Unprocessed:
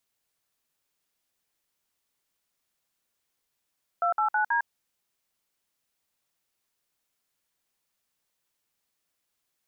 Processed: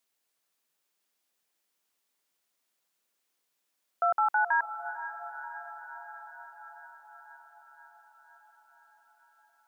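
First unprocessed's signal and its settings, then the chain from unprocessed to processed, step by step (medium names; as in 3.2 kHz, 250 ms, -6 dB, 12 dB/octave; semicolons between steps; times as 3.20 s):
DTMF "289D", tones 105 ms, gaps 56 ms, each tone -24.5 dBFS
high-pass 210 Hz 12 dB/octave; echo that smears into a reverb 475 ms, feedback 70%, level -12 dB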